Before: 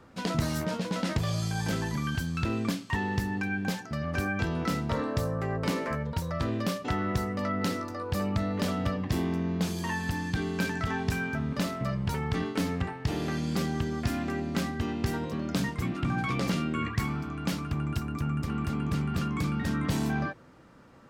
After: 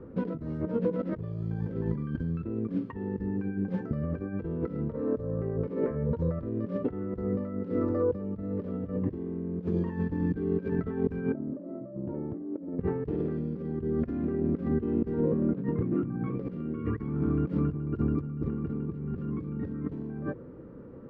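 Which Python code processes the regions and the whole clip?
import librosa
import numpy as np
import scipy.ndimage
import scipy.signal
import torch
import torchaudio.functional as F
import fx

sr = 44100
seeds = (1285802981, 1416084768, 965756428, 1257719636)

y = fx.chain(x, sr, fx.double_bandpass(hz=440.0, octaves=0.86),
    fx.over_compress(threshold_db=-46.0, ratio=-1.0), at=(11.32, 12.79))
y = fx.chain(y, sr, fx.highpass(hz=120.0, slope=12),
    fx.air_absorb(metres=310.0), at=(15.2, 16.37))
y = fx.over_compress(y, sr, threshold_db=-34.0, ratio=-0.5)
y = scipy.signal.sosfilt(scipy.signal.butter(2, 1100.0, 'lowpass', fs=sr, output='sos'), y)
y = fx.low_shelf_res(y, sr, hz=580.0, db=6.5, q=3.0)
y = F.gain(torch.from_numpy(y), -2.5).numpy()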